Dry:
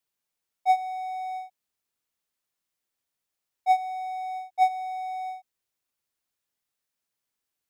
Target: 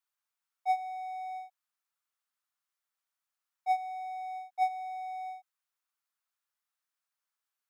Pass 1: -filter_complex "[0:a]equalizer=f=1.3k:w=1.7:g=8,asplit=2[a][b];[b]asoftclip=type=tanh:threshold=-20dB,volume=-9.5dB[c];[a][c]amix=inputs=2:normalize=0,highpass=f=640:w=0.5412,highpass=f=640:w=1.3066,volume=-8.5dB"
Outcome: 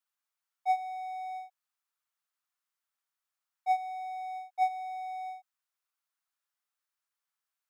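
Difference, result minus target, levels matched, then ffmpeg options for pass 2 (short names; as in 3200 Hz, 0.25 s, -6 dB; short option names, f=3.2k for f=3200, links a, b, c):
soft clip: distortion -7 dB
-filter_complex "[0:a]equalizer=f=1.3k:w=1.7:g=8,asplit=2[a][b];[b]asoftclip=type=tanh:threshold=-30.5dB,volume=-9.5dB[c];[a][c]amix=inputs=2:normalize=0,highpass=f=640:w=0.5412,highpass=f=640:w=1.3066,volume=-8.5dB"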